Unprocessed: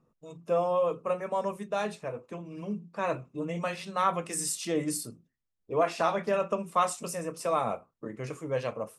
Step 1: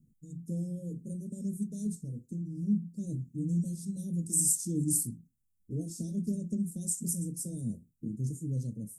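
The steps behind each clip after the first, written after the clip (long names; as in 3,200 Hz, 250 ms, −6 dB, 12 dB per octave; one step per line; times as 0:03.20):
inverse Chebyshev band-stop filter 900–2,200 Hz, stop band 80 dB
level +7.5 dB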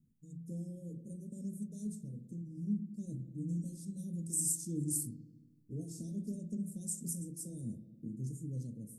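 spring reverb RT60 1.4 s, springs 42/54 ms, DRR 8.5 dB
level −6.5 dB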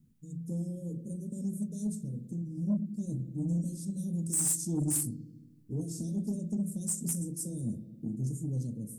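soft clipping −30 dBFS, distortion −16 dB
level +7.5 dB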